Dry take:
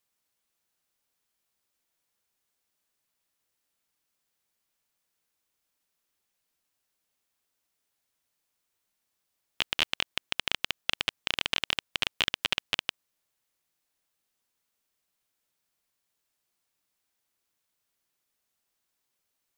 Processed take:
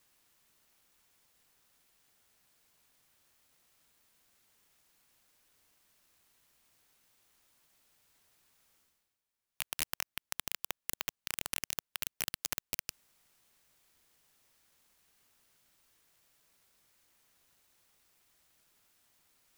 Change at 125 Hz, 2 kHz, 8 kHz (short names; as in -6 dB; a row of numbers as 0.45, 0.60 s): -6.0, -11.5, +4.0 dB